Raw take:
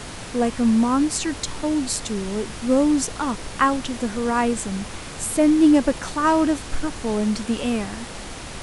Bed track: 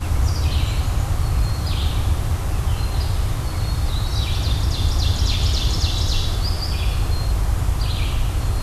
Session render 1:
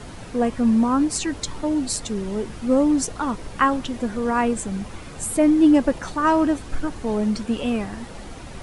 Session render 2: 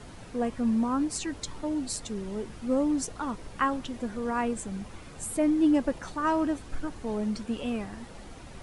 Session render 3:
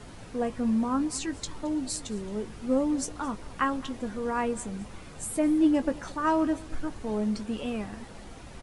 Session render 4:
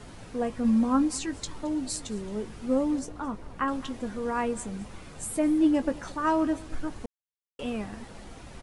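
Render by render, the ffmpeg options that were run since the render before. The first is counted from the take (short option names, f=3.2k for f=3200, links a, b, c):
-af "afftdn=nr=9:nf=-35"
-af "volume=-8dB"
-filter_complex "[0:a]asplit=2[a][b];[b]adelay=19,volume=-12dB[c];[a][c]amix=inputs=2:normalize=0,aecho=1:1:219:0.0891"
-filter_complex "[0:a]asettb=1/sr,asplit=3[a][b][c];[a]atrim=end=0.644[d];[b]atrim=start=0.64:end=1.15,asetpts=PTS-STARTPTS,afade=t=in:d=0.004:c=qsin,afade=t=out:st=0.506:d=0.004:c=qsin,aecho=1:1:3.7:0.64,atrim=end_sample=22491[e];[c]atrim=start=1.146[f];[d][e]acrossfade=d=0.004:c1=hsin:c2=qsin[g];[g][f]acrossfade=d=0.004:c1=qsin:c2=hsin,asettb=1/sr,asplit=3[h][i][j];[h]atrim=end=2.994[k];[i]atrim=start=2.99:end=3.68,asetpts=PTS-STARTPTS,afade=t=in:d=0.004:c=qsin,afade=t=out:st=0.686:d=0.004:c=qsin,highshelf=f=2.1k:g=-9.5[l];[j]atrim=start=3.676[m];[k][l]acrossfade=d=0.004:c1=hsin:c2=qsin[n];[n][m]acrossfade=d=0.004:c1=qsin:c2=hsin,asplit=3[o][p][q];[o]atrim=end=7.06,asetpts=PTS-STARTPTS,afade=t=out:st=7.056:d=0.004:c=hsin[r];[p]atrim=start=7.06:end=7.59,asetpts=PTS-STARTPTS,volume=0[s];[q]atrim=start=7.59,asetpts=PTS-STARTPTS,afade=t=in:d=0.004:c=hsin[t];[r][s][t]concat=n=3:v=0:a=1"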